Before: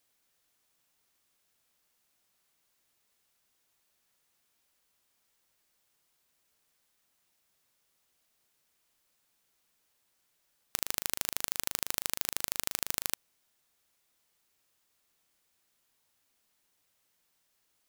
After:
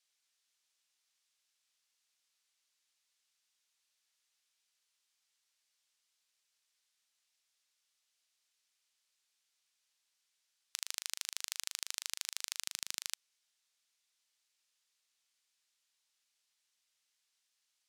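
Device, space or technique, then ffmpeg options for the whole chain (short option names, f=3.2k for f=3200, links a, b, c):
piezo pickup straight into a mixer: -filter_complex "[0:a]asettb=1/sr,asplit=3[a][b][c];[a]atrim=end=12.654[d];[b]atrim=start=12.65:end=13.06,asetpts=PTS-STARTPTS,afade=t=in:d=0.004:c=qsin,afade=t=out:st=0.406:d=0.004:c=qsin,highpass=230[e];[c]atrim=start=13.056[f];[d][e]acrossfade=d=0.004:c1=hsin:c2=qsin[g];[g][f]acrossfade=d=0.004:c1=qsin:c2=hsin,lowpass=5k,aderivative,volume=5dB"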